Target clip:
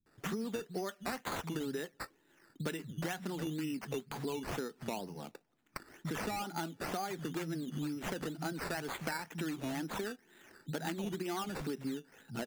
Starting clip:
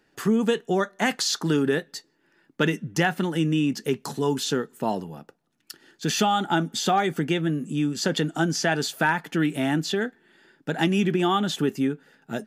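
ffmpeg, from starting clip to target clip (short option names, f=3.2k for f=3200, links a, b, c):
-filter_complex "[0:a]acrossover=split=160[a][b];[b]adelay=60[c];[a][c]amix=inputs=2:normalize=0,acompressor=threshold=-34dB:ratio=6,acrusher=samples=11:mix=1:aa=0.000001:lfo=1:lforange=6.6:lforate=2.1,volume=-2dB"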